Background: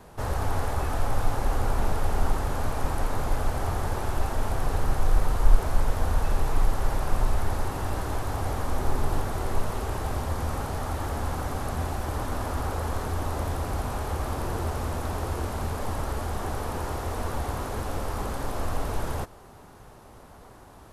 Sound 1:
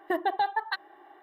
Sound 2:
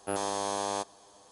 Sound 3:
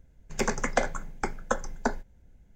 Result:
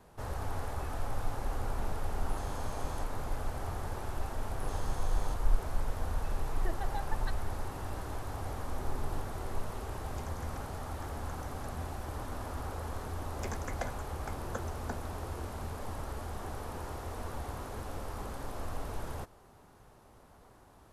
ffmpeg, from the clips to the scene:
-filter_complex "[2:a]asplit=2[s0][s1];[3:a]asplit=2[s2][s3];[0:a]volume=0.335[s4];[s2]acompressor=threshold=0.01:ratio=6:attack=3.2:release=140:knee=1:detection=peak[s5];[s0]atrim=end=1.31,asetpts=PTS-STARTPTS,volume=0.168,afade=t=in:d=0.004:c=hsin,afade=t=out:st=1.306:d=0.004:c=hsin,adelay=2210[s6];[s1]atrim=end=1.31,asetpts=PTS-STARTPTS,volume=0.188,afade=t=in:d=0.004:c=hsin,afade=t=out:st=1.306:d=0.004:c=hsin,adelay=4520[s7];[1:a]atrim=end=1.22,asetpts=PTS-STARTPTS,volume=0.2,afade=t=in:d=0.004:c=hsin,afade=t=out:st=1.216:d=0.004:c=hsin,adelay=6550[s8];[s5]atrim=end=2.55,asetpts=PTS-STARTPTS,volume=0.376,afade=t=in:d=0.004:c=hsin,afade=t=out:st=2.546:d=0.004:c=hsin,adelay=9790[s9];[s3]atrim=end=2.55,asetpts=PTS-STARTPTS,volume=0.211,afade=t=in:d=0.004:c=hsin,afade=t=out:st=2.546:d=0.004:c=hsin,adelay=13040[s10];[s4][s6][s7][s8][s9][s10]amix=inputs=6:normalize=0"

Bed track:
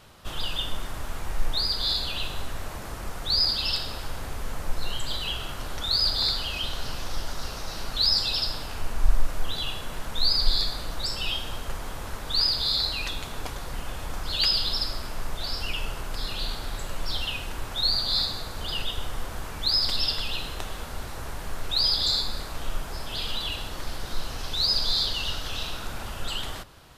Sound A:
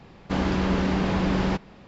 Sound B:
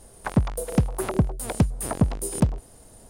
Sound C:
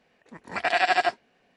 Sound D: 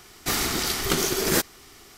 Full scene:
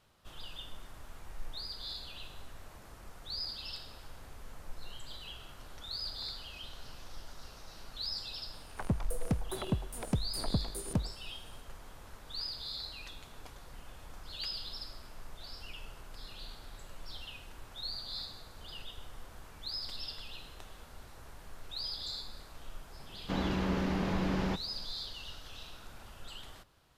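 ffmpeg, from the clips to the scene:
-filter_complex "[0:a]volume=0.158[s0];[2:a]atrim=end=3.09,asetpts=PTS-STARTPTS,volume=0.266,afade=t=in:d=0.004:c=hsin,afade=t=out:st=3.086:d=0.004:c=hsin,adelay=8530[s1];[1:a]atrim=end=1.87,asetpts=PTS-STARTPTS,volume=0.376,afade=t=in:d=0.004:c=hsin,afade=t=out:st=1.866:d=0.004:c=hsin,adelay=22990[s2];[s0][s1][s2]amix=inputs=3:normalize=0"

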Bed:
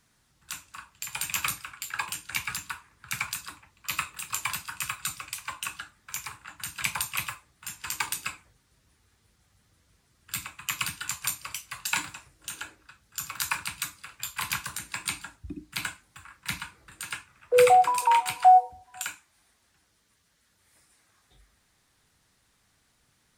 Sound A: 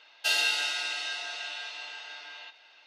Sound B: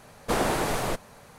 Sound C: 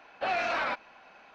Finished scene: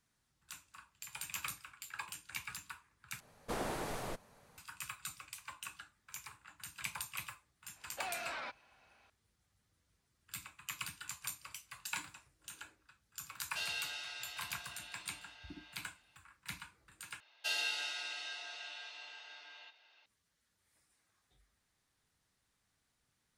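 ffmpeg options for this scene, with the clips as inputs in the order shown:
-filter_complex "[1:a]asplit=2[s0][s1];[0:a]volume=0.237[s2];[3:a]highshelf=f=3400:g=12[s3];[s2]asplit=3[s4][s5][s6];[s4]atrim=end=3.204[s7];[2:a]atrim=end=1.38,asetpts=PTS-STARTPTS,volume=0.211[s8];[s5]atrim=start=4.576:end=17.204[s9];[s1]atrim=end=2.86,asetpts=PTS-STARTPTS,volume=0.316[s10];[s6]atrim=start=20.056[s11];[s3]atrim=end=1.34,asetpts=PTS-STARTPTS,volume=0.178,afade=t=in:d=0.004:c=hsin,afade=t=out:st=1.336:d=0.004:c=hsin,adelay=7760[s12];[s0]atrim=end=2.86,asetpts=PTS-STARTPTS,volume=0.2,afade=t=in:d=0.004:c=hsin,afade=t=out:st=2.856:d=0.004:c=hsin,adelay=13310[s13];[s7][s8]acrossfade=d=0.004:c1=hsin:c2=hsin[s14];[s14][s9]acrossfade=d=0.004:c1=hsin:c2=hsin[s15];[s15][s10]acrossfade=d=0.004:c1=hsin:c2=hsin[s16];[s16][s11]acrossfade=d=0.004:c1=hsin:c2=hsin[s17];[s17][s12][s13]amix=inputs=3:normalize=0"

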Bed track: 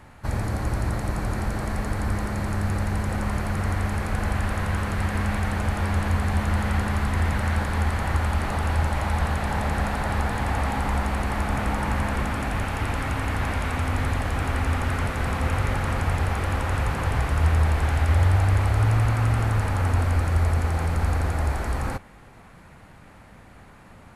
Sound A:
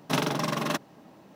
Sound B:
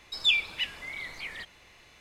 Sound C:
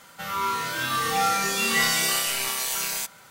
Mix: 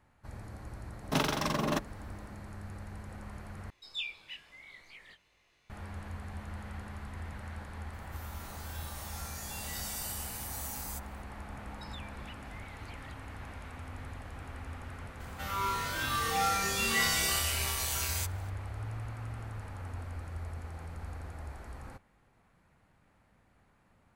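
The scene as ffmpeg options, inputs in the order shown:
-filter_complex "[2:a]asplit=2[s0][s1];[3:a]asplit=2[s2][s3];[0:a]volume=0.112[s4];[1:a]acrossover=split=970[s5][s6];[s5]aeval=exprs='val(0)*(1-0.5/2+0.5/2*cos(2*PI*1.5*n/s))':c=same[s7];[s6]aeval=exprs='val(0)*(1-0.5/2-0.5/2*cos(2*PI*1.5*n/s))':c=same[s8];[s7][s8]amix=inputs=2:normalize=0[s9];[s0]flanger=delay=18:depth=4.4:speed=2.3[s10];[s2]aderivative[s11];[s1]acompressor=threshold=0.01:ratio=6:attack=22:release=301:knee=1:detection=peak[s12];[s4]asplit=2[s13][s14];[s13]atrim=end=3.704[s15];[s10]atrim=end=2,asetpts=PTS-STARTPTS,volume=0.282[s16];[s14]atrim=start=5.696[s17];[s9]atrim=end=1.35,asetpts=PTS-STARTPTS,volume=0.944,afade=t=in:d=0.004:c=hsin,afade=t=out:st=1.346:d=0.004:c=hsin,adelay=1020[s18];[s11]atrim=end=3.3,asetpts=PTS-STARTPTS,volume=0.188,afade=t=in:d=0.004:c=hsin,afade=t=out:st=3.296:d=0.004:c=hsin,adelay=7930[s19];[s12]atrim=end=2,asetpts=PTS-STARTPTS,volume=0.251,afade=t=in:d=0.004:c=hsin,afade=t=out:st=1.996:d=0.004:c=hsin,adelay=11690[s20];[s3]atrim=end=3.3,asetpts=PTS-STARTPTS,volume=0.473,afade=t=in:d=0.004:c=hsin,afade=t=out:st=3.296:d=0.004:c=hsin,adelay=15200[s21];[s15][s16]acrossfade=d=0.004:c1=hsin:c2=hsin[s22];[s22][s17]acrossfade=d=0.004:c1=hsin:c2=hsin[s23];[s23][s18][s19][s20][s21]amix=inputs=5:normalize=0"

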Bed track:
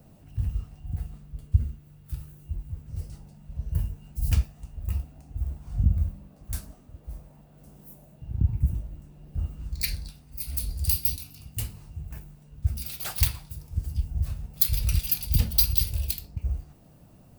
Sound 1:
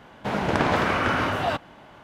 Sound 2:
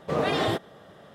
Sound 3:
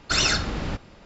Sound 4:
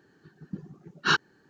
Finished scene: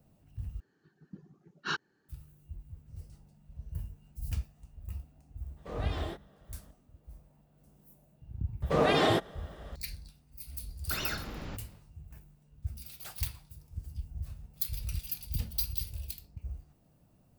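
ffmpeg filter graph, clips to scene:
-filter_complex "[2:a]asplit=2[s0][s1];[0:a]volume=0.266[s2];[s0]flanger=delay=18:depth=5.9:speed=2.8[s3];[3:a]acrossover=split=3500[s4][s5];[s5]acompressor=threshold=0.0251:ratio=4:attack=1:release=60[s6];[s4][s6]amix=inputs=2:normalize=0[s7];[s2]asplit=2[s8][s9];[s8]atrim=end=0.604[s10];[4:a]atrim=end=1.49,asetpts=PTS-STARTPTS,volume=0.282[s11];[s9]atrim=start=2.086[s12];[s3]atrim=end=1.14,asetpts=PTS-STARTPTS,volume=0.266,afade=t=in:d=0.004:c=hsin,afade=t=out:st=1.136:d=0.004:c=hsin,adelay=245637S[s13];[s1]atrim=end=1.14,asetpts=PTS-STARTPTS,afade=t=in:d=0.004:c=hsin,afade=t=out:st=1.136:d=0.004:c=hsin,adelay=8620[s14];[s7]atrim=end=1.05,asetpts=PTS-STARTPTS,volume=0.251,afade=t=in:d=0.1,afade=t=out:st=0.95:d=0.1,adelay=10800[s15];[s10][s11]acrossfade=d=0.004:c1=hsin:c2=hsin[s16];[s16][s12]acrossfade=d=0.004:c1=hsin:c2=hsin[s17];[s17][s13][s14][s15]amix=inputs=4:normalize=0"

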